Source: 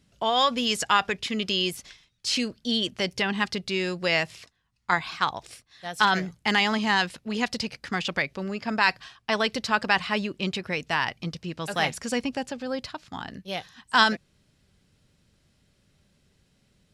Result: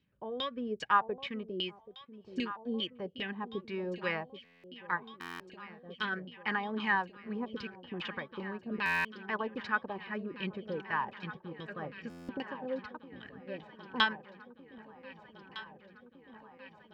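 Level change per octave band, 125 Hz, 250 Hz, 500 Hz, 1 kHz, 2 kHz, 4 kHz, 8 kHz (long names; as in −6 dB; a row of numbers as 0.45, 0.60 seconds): −10.5 dB, −9.0 dB, −8.5 dB, −9.5 dB, −9.0 dB, −13.5 dB, below −25 dB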